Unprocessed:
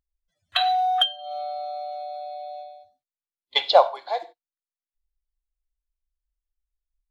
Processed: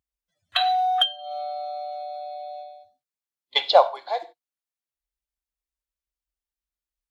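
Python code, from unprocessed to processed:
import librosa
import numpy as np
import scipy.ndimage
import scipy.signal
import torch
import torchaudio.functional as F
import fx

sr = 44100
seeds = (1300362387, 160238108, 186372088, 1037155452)

y = scipy.signal.sosfilt(scipy.signal.butter(2, 74.0, 'highpass', fs=sr, output='sos'), x)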